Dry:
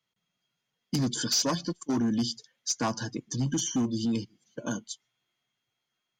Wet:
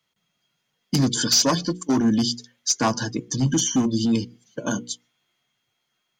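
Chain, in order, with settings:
mains-hum notches 60/120/180/240/300/360/420/480 Hz
level +8 dB

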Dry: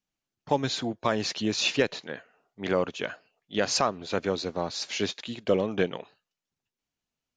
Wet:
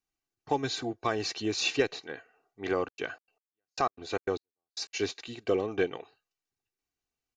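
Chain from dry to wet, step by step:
notch filter 3,300 Hz, Q 8.2
comb filter 2.6 ms, depth 60%
0:02.83–0:04.93: gate pattern "xx.x....x." 151 BPM −60 dB
level −4 dB

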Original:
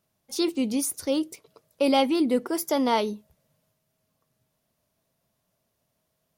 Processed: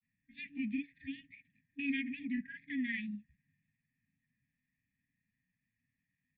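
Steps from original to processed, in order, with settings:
formant resonators in series e
brick-wall band-stop 280–1,600 Hz
dynamic equaliser 300 Hz, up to −6 dB, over −55 dBFS, Q 1.3
granular cloud, spray 28 ms, pitch spread up and down by 0 semitones
level +13.5 dB

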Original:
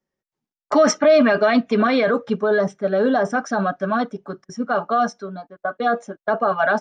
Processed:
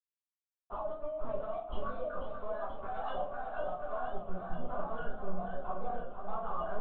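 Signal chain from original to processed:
time-frequency cells dropped at random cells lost 36%
0:01.98–0:04.12: Butterworth high-pass 490 Hz 36 dB per octave
dynamic equaliser 1,100 Hz, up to +4 dB, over −31 dBFS, Q 0.72
downward compressor 10 to 1, threshold −29 dBFS, peak gain reduction 20.5 dB
brickwall limiter −25 dBFS, peak gain reduction 9 dB
output level in coarse steps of 14 dB
dead-zone distortion −56.5 dBFS
high-frequency loss of the air 420 metres
phaser with its sweep stopped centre 780 Hz, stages 4
linear-prediction vocoder at 8 kHz pitch kept
rectangular room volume 49 cubic metres, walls mixed, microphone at 1.8 metres
feedback echo with a swinging delay time 485 ms, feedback 75%, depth 100 cents, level −8 dB
level +1 dB

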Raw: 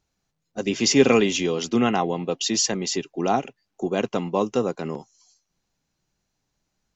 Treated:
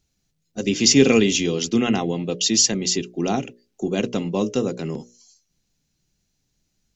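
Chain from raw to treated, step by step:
parametric band 970 Hz −13 dB 2 octaves
mains-hum notches 60/120/180/240/300/360/420/480/540/600 Hz
level +6.5 dB

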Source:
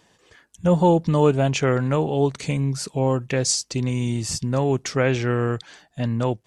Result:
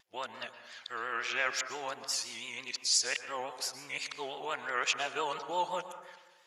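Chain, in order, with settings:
played backwards from end to start
high-pass filter 1,300 Hz 12 dB per octave
parametric band 8,200 Hz −13.5 dB 0.23 octaves
notch filter 5,900 Hz, Q 15
pitch vibrato 5.8 Hz 95 cents
dense smooth reverb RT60 1.2 s, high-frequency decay 0.35×, pre-delay 105 ms, DRR 9.5 dB
level −2 dB

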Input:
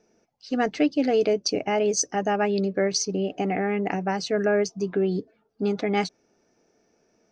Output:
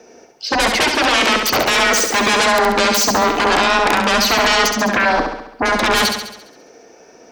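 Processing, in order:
sine wavefolder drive 19 dB, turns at −10 dBFS
frequency shifter +24 Hz
bass and treble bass −9 dB, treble −2 dB
on a send: flutter between parallel walls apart 11.7 metres, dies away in 0.79 s
on the sum: level −1.5 dB

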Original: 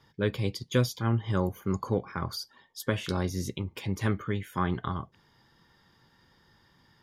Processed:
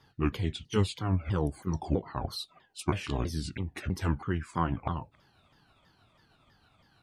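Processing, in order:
pitch shifter swept by a sawtooth −7.5 semitones, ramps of 325 ms

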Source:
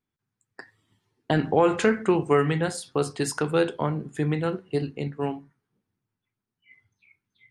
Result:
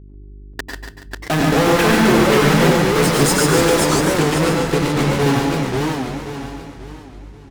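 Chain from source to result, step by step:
0:01.53–0:02.85: low-pass filter 2,400 Hz 12 dB per octave
0:03.71–0:04.93: downward compressor 4 to 1, threshold −33 dBFS, peak gain reduction 11.5 dB
fuzz pedal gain 43 dB, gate −38 dBFS
hum with harmonics 50 Hz, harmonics 8, −38 dBFS −7 dB per octave
repeating echo 142 ms, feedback 49%, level −4.5 dB
convolution reverb RT60 0.25 s, pre-delay 92 ms, DRR 3.5 dB
feedback echo with a swinging delay time 535 ms, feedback 37%, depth 217 cents, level −3.5 dB
level −2 dB

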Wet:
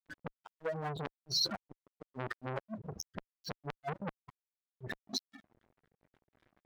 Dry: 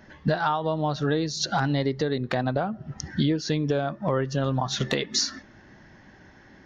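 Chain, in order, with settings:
expanding power law on the bin magnitudes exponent 3.6
output level in coarse steps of 12 dB
sound drawn into the spectrogram rise, 0:04.28–0:04.71, 1,000–3,000 Hz −32 dBFS
gate with flip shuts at −25 dBFS, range −42 dB
flanger 0.5 Hz, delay 6.6 ms, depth 4.9 ms, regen −17%
dead-zone distortion −58.5 dBFS
saturating transformer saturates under 2,300 Hz
level +9.5 dB

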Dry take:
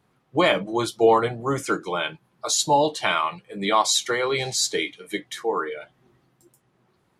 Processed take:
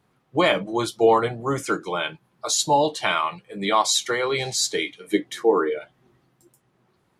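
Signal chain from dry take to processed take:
0:05.07–0:05.79: parametric band 320 Hz +10 dB 1.6 octaves

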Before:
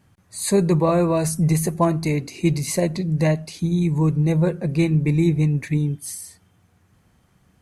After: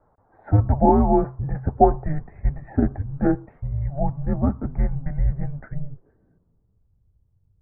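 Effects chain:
low-pass filter sweep 1,100 Hz → 260 Hz, 0:05.51–0:07.03
single-sideband voice off tune −290 Hz 220–2,100 Hz
level +1 dB

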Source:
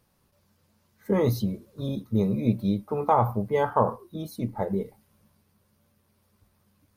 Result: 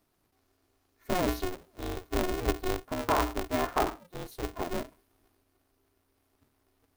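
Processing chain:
ring modulator with a square carrier 180 Hz
level −5.5 dB

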